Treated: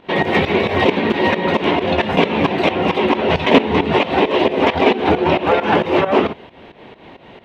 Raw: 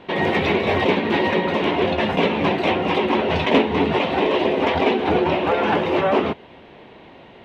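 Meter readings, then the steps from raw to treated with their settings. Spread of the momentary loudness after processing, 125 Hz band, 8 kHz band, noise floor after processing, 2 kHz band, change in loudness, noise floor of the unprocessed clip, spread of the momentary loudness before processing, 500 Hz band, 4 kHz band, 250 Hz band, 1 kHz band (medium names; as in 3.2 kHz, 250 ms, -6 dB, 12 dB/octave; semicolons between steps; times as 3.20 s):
3 LU, +3.5 dB, no reading, -43 dBFS, +3.5 dB, +3.5 dB, -45 dBFS, 2 LU, +3.5 dB, +3.5 dB, +3.5 dB, +3.5 dB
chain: volume shaper 134 bpm, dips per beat 2, -15 dB, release 188 ms; trim +5.5 dB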